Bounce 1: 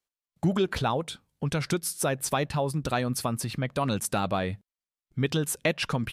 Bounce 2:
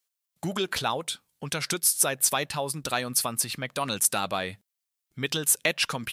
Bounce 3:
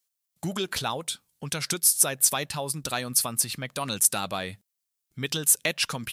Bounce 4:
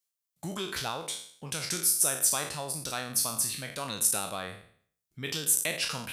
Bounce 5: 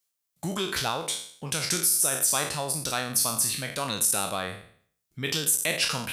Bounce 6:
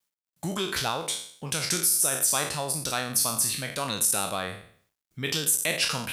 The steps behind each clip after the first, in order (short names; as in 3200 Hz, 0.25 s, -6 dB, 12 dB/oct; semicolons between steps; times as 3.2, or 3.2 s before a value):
tilt +3 dB/oct
tone controls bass +4 dB, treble +5 dB; gain -2.5 dB
spectral trails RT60 0.55 s; gain -7 dB
limiter -17.5 dBFS, peak gain reduction 9 dB; gain +5.5 dB
bit-crush 12-bit